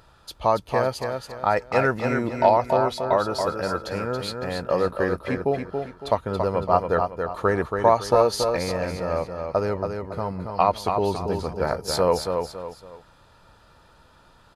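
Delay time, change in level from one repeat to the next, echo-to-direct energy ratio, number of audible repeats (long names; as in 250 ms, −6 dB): 279 ms, −9.0 dB, −5.0 dB, 3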